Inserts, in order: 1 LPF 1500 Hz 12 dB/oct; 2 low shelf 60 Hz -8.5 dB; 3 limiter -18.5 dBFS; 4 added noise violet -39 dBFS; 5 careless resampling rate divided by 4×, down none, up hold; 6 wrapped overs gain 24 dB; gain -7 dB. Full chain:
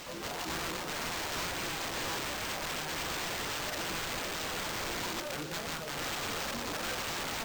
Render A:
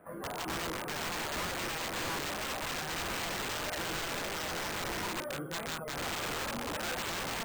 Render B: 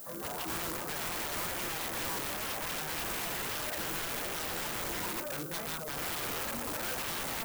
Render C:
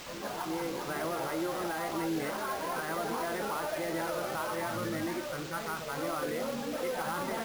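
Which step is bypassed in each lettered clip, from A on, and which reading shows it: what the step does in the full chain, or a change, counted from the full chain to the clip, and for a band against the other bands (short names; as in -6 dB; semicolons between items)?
4, 8 kHz band -2.0 dB; 5, 4 kHz band -2.0 dB; 6, crest factor change +5.5 dB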